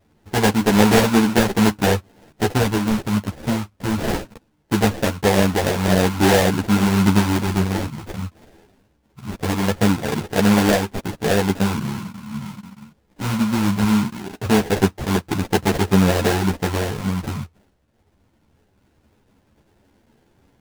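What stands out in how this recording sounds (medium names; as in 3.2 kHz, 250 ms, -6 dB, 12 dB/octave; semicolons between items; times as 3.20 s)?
phasing stages 4, 0.21 Hz, lowest notch 390–1900 Hz; aliases and images of a low sample rate 1.2 kHz, jitter 20%; a shimmering, thickened sound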